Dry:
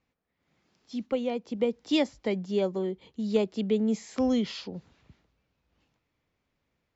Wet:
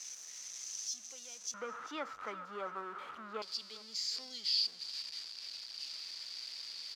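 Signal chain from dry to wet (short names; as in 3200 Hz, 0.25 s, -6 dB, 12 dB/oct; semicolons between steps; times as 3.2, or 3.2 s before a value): zero-crossing step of -31 dBFS; band-pass 6100 Hz, Q 12, from 1.54 s 1300 Hz, from 3.42 s 4700 Hz; feedback echo 0.399 s, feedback 34%, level -18 dB; gain +10 dB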